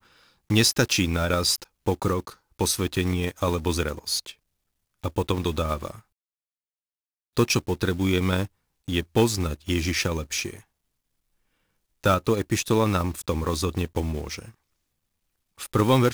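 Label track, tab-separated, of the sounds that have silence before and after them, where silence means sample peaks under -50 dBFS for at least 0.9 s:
7.370000	10.630000	sound
12.040000	14.540000	sound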